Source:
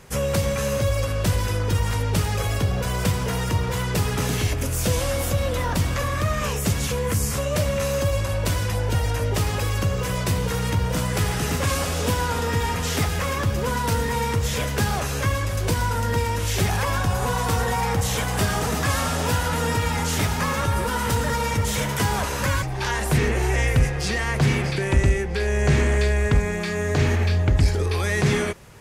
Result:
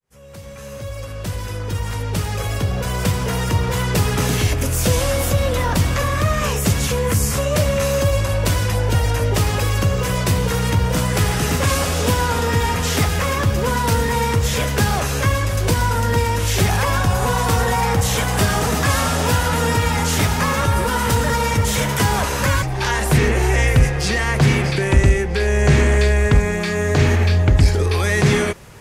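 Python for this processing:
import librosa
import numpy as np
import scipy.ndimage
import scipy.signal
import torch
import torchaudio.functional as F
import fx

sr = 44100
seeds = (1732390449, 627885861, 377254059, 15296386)

y = fx.fade_in_head(x, sr, length_s=3.88)
y = F.gain(torch.from_numpy(y), 5.0).numpy()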